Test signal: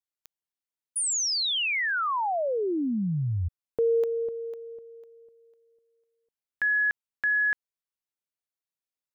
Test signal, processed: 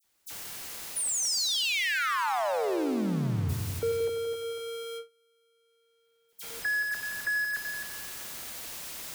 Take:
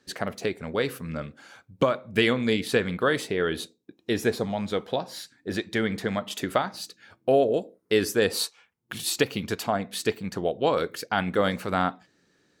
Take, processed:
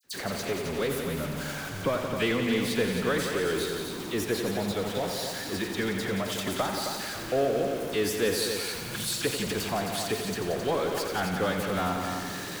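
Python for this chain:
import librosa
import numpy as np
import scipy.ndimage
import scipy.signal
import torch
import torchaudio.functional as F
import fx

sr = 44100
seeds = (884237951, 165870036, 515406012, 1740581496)

p1 = x + 0.5 * 10.0 ** (-26.5 / 20.0) * np.sign(x)
p2 = fx.echo_heads(p1, sr, ms=88, heads='all three', feedback_pct=44, wet_db=-9.0)
p3 = fx.gate_hold(p2, sr, open_db=-27.0, close_db=-28.0, hold_ms=176.0, range_db=-30, attack_ms=11.0, release_ms=108.0)
p4 = 10.0 ** (-17.5 / 20.0) * np.tanh(p3 / 10.0 ** (-17.5 / 20.0))
p5 = p3 + (p4 * librosa.db_to_amplitude(-8.5))
p6 = fx.dispersion(p5, sr, late='lows', ms=43.0, hz=2900.0)
y = p6 * librosa.db_to_amplitude(-9.0)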